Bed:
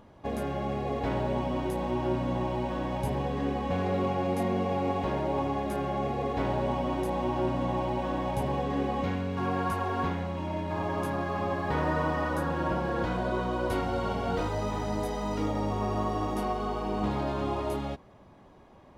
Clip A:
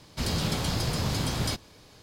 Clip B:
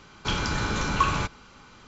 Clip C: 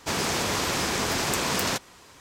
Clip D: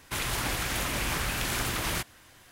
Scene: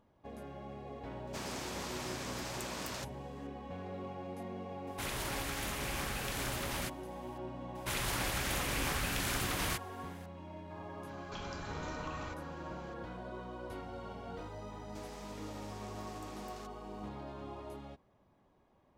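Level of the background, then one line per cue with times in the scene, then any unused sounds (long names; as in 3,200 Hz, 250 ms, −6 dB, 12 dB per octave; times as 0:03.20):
bed −15 dB
0:01.27: mix in C −16 dB
0:04.87: mix in D −8.5 dB
0:07.75: mix in D −5 dB
0:11.07: mix in B −7.5 dB + downward compressor 3 to 1, threshold −38 dBFS
0:14.89: mix in C −17 dB + downward compressor, threshold −34 dBFS
not used: A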